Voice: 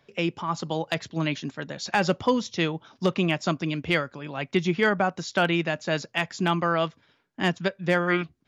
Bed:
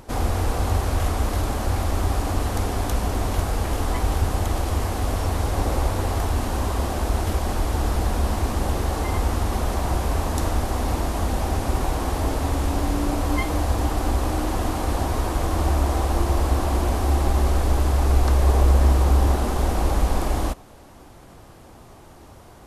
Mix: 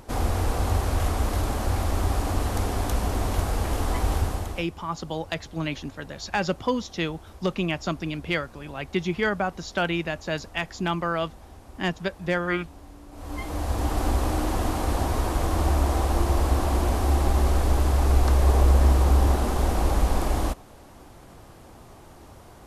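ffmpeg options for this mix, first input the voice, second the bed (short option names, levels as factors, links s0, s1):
-filter_complex "[0:a]adelay=4400,volume=0.75[s0];[1:a]volume=9.44,afade=t=out:st=4.16:d=0.52:silence=0.0891251,afade=t=in:st=13.11:d=0.9:silence=0.0841395[s1];[s0][s1]amix=inputs=2:normalize=0"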